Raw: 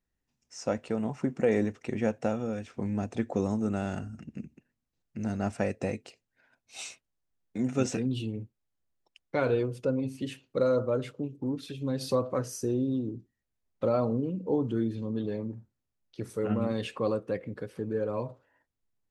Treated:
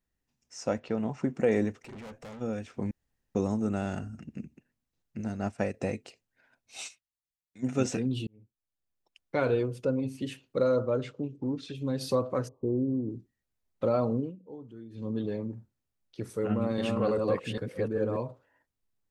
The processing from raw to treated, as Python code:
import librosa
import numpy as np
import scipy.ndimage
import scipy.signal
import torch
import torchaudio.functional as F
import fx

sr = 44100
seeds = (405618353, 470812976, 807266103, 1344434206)

y = fx.lowpass(x, sr, hz=fx.line((0.79, 5200.0), (1.32, 9100.0)), slope=24, at=(0.79, 1.32), fade=0.02)
y = fx.tube_stage(y, sr, drive_db=42.0, bias=0.4, at=(1.82, 2.4), fade=0.02)
y = fx.upward_expand(y, sr, threshold_db=-46.0, expansion=1.5, at=(5.21, 5.74))
y = fx.tone_stack(y, sr, knobs='5-5-5', at=(6.87, 7.62), fade=0.02)
y = fx.lowpass(y, sr, hz=7400.0, slope=24, at=(10.61, 11.75))
y = fx.brickwall_lowpass(y, sr, high_hz=1200.0, at=(12.47, 13.09), fade=0.02)
y = fx.reverse_delay(y, sr, ms=399, wet_db=-1.0, at=(16.38, 18.17))
y = fx.edit(y, sr, fx.room_tone_fill(start_s=2.91, length_s=0.44),
    fx.fade_in_span(start_s=8.27, length_s=1.08),
    fx.fade_down_up(start_s=14.19, length_s=0.88, db=-17.0, fade_s=0.17), tone=tone)